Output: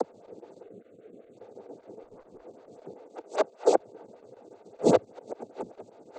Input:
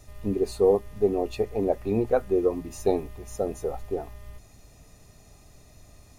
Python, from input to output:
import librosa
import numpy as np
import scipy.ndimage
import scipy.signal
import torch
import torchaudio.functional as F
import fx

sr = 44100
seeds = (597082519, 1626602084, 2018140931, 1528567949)

y = fx.bin_compress(x, sr, power=0.2)
y = fx.highpass(y, sr, hz=fx.line((3.04, 310.0), (3.73, 870.0)), slope=12, at=(3.04, 3.73), fade=0.02)
y = fx.gate_flip(y, sr, shuts_db=-13.0, range_db=-35)
y = fx.noise_vocoder(y, sr, seeds[0], bands=16)
y = fx.chopper(y, sr, hz=7.1, depth_pct=60, duty_pct=85)
y = fx.fixed_phaser(y, sr, hz=2200.0, stages=4, at=(0.63, 1.37))
y = fx.tube_stage(y, sr, drive_db=51.0, bias=0.65, at=(2.03, 2.43))
y = fx.stagger_phaser(y, sr, hz=5.1)
y = y * 10.0 ** (8.0 / 20.0)